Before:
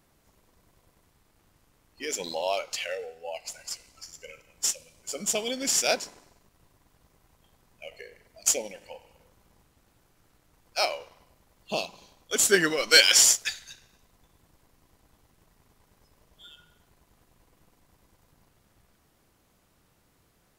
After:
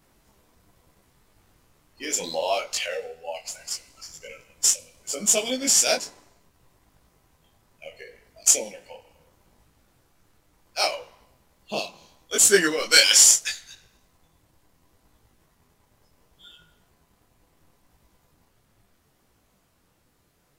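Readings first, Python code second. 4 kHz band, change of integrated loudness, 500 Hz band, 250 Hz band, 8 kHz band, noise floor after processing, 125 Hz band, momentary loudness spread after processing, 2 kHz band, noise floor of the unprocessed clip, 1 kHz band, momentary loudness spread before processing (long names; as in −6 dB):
+2.5 dB, +4.5 dB, +2.5 dB, +3.0 dB, +6.0 dB, −66 dBFS, +0.5 dB, 21 LU, +1.0 dB, −67 dBFS, +2.0 dB, 22 LU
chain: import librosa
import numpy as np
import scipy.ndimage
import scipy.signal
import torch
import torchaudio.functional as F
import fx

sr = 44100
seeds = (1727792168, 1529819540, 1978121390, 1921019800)

p1 = fx.dynamic_eq(x, sr, hz=8300.0, q=0.81, threshold_db=-37.0, ratio=4.0, max_db=6)
p2 = fx.rider(p1, sr, range_db=3, speed_s=0.5)
p3 = p1 + (p2 * 10.0 ** (0.5 / 20.0))
p4 = fx.detune_double(p3, sr, cents=25)
y = p4 * 10.0 ** (-1.0 / 20.0)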